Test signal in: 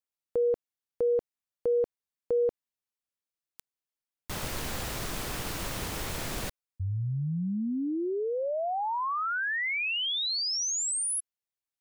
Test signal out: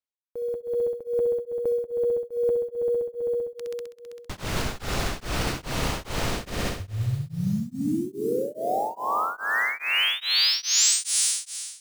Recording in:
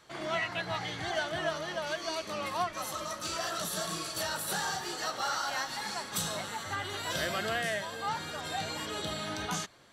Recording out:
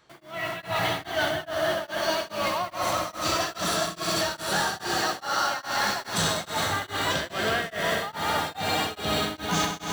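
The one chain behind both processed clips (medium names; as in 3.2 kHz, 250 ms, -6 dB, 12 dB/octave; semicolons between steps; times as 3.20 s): tape spacing loss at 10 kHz 21 dB; in parallel at -9.5 dB: word length cut 8-bit, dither none; on the sum: multi-head delay 65 ms, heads all three, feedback 73%, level -11 dB; reverse; compression 6:1, threshold -38 dBFS; reverse; treble shelf 4 kHz +11.5 dB; level rider gain up to 15 dB; tremolo of two beating tones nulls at 2.4 Hz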